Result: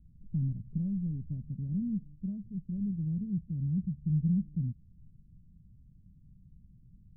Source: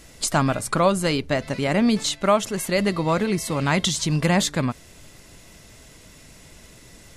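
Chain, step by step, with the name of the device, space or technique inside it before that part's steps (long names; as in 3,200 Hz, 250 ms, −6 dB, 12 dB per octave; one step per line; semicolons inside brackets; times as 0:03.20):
the neighbour's flat through the wall (low-pass filter 170 Hz 24 dB per octave; parametric band 190 Hz +5 dB 0.59 octaves)
level −6 dB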